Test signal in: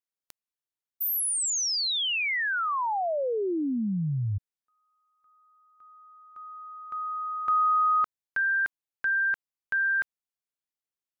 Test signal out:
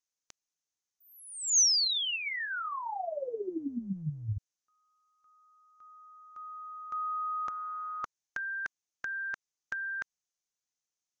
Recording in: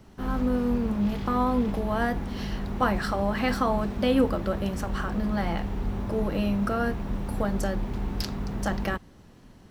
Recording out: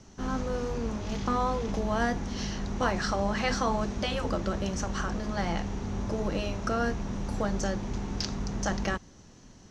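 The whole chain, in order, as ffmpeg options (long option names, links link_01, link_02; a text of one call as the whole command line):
ffmpeg -i in.wav -filter_complex "[0:a]afftfilt=real='re*lt(hypot(re,im),0.501)':imag='im*lt(hypot(re,im),0.501)':win_size=1024:overlap=0.75,acrossover=split=4600[link_01][link_02];[link_02]acompressor=threshold=-42dB:ratio=4:attack=1:release=60[link_03];[link_01][link_03]amix=inputs=2:normalize=0,lowpass=frequency=6300:width_type=q:width=5.7,volume=-1.5dB" out.wav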